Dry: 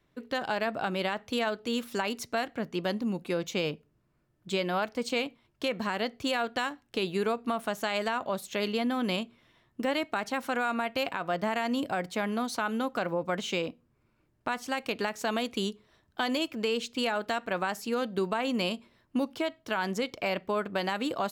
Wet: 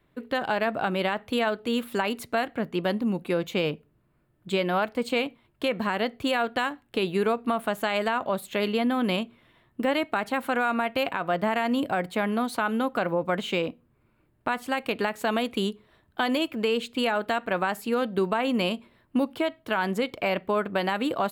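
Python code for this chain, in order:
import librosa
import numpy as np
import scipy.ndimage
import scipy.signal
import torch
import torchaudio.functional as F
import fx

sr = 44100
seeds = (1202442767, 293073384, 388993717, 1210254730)

y = fx.peak_eq(x, sr, hz=5800.0, db=-14.0, octaves=0.66)
y = y * librosa.db_to_amplitude(4.5)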